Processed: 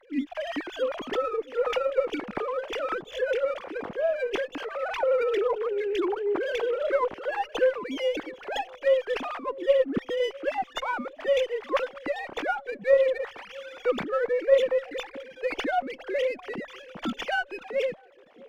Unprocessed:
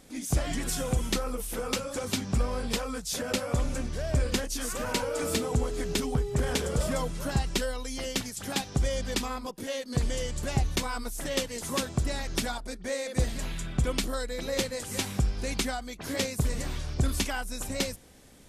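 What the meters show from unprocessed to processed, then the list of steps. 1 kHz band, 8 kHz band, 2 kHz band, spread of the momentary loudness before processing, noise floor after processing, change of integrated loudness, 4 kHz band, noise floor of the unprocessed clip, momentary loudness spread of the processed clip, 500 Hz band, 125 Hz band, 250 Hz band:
+5.5 dB, below −15 dB, +3.5 dB, 5 LU, −52 dBFS, +3.0 dB, −4.5 dB, −43 dBFS, 10 LU, +9.0 dB, below −20 dB, −3.0 dB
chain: three sine waves on the formant tracks
delay with a low-pass on its return 654 ms, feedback 51%, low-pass 560 Hz, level −19.5 dB
windowed peak hold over 3 samples
level +2 dB

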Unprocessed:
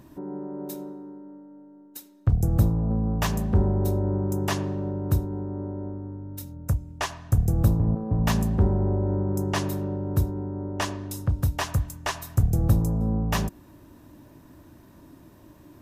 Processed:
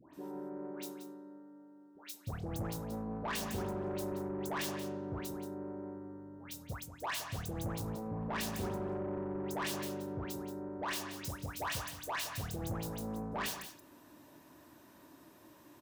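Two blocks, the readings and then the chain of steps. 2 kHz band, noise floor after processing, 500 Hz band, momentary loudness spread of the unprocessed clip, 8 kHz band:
−6.0 dB, −60 dBFS, −8.5 dB, 14 LU, −6.0 dB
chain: stylus tracing distortion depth 0.18 ms
high-pass filter 640 Hz 6 dB per octave
all-pass dispersion highs, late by 138 ms, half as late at 1,400 Hz
soft clipping −31 dBFS, distortion −12 dB
on a send: single-tap delay 178 ms −10.5 dB
on the sum: level −1.5 dB

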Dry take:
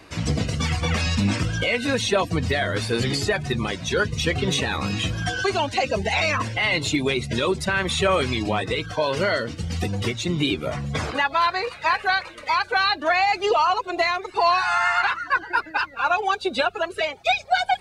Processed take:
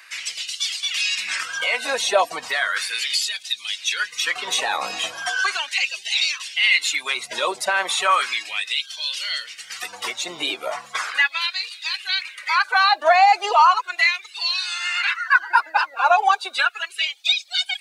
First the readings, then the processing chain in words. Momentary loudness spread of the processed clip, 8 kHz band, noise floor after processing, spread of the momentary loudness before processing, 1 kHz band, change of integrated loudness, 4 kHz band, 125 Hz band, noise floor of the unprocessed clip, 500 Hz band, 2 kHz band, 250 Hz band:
10 LU, +5.0 dB, −45 dBFS, 6 LU, +2.5 dB, +2.0 dB, +5.5 dB, below −30 dB, −42 dBFS, −4.0 dB, +3.0 dB, −19.0 dB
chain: high-shelf EQ 7,100 Hz +9.5 dB
auto-filter high-pass sine 0.36 Hz 690–3,500 Hz

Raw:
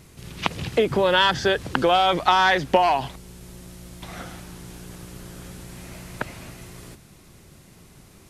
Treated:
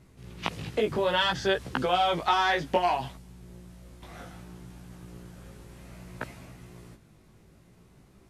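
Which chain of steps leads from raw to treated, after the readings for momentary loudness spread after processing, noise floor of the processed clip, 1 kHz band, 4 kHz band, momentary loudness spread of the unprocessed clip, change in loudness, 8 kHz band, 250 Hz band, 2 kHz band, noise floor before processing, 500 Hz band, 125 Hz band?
22 LU, −58 dBFS, −6.5 dB, −6.5 dB, 22 LU, −6.0 dB, −8.5 dB, −6.5 dB, −7.0 dB, −50 dBFS, −6.5 dB, −6.0 dB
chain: chorus effect 0.62 Hz, delay 15.5 ms, depth 3.4 ms
one half of a high-frequency compander decoder only
level −3.5 dB

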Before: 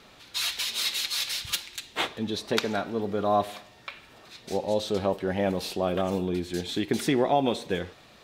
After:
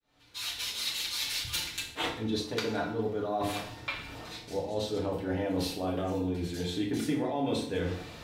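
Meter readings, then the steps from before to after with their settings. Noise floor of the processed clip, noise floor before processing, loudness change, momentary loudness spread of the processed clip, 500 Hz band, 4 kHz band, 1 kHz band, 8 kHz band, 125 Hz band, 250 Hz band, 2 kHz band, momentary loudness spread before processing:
−48 dBFS, −54 dBFS, −4.5 dB, 6 LU, −5.5 dB, −4.0 dB, −7.0 dB, −3.5 dB, −1.0 dB, −2.5 dB, −3.5 dB, 12 LU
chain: fade in at the beginning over 1.87 s
low-shelf EQ 160 Hz +9 dB
mains-hum notches 50/100/150/200/250/300/350 Hz
reversed playback
downward compressor 6 to 1, threshold −36 dBFS, peak gain reduction 17.5 dB
reversed playback
feedback delay network reverb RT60 0.55 s, low-frequency decay 1.1×, high-frequency decay 0.85×, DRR −2 dB
level +2.5 dB

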